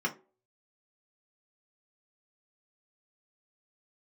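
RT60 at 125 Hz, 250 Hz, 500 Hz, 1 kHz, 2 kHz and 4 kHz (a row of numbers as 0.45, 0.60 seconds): 0.25, 0.35, 0.45, 0.30, 0.25, 0.15 seconds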